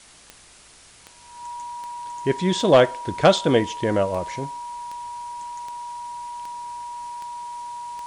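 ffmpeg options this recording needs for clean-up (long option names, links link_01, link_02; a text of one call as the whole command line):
ffmpeg -i in.wav -af "adeclick=threshold=4,bandreject=frequency=960:width=30,afwtdn=0.0045" out.wav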